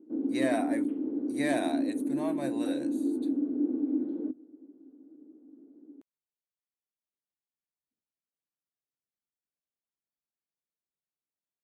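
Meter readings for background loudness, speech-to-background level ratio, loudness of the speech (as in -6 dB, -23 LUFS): -31.0 LUFS, -5.0 dB, -36.0 LUFS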